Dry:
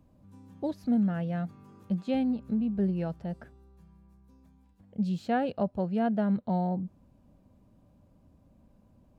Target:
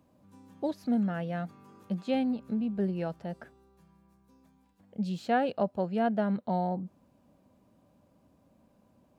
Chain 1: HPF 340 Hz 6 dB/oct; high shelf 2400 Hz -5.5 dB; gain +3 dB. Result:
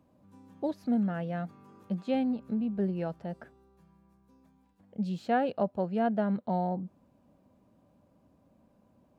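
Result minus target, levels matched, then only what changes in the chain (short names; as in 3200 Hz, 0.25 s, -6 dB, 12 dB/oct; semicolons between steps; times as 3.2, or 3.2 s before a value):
4000 Hz band -3.5 dB
remove: high shelf 2400 Hz -5.5 dB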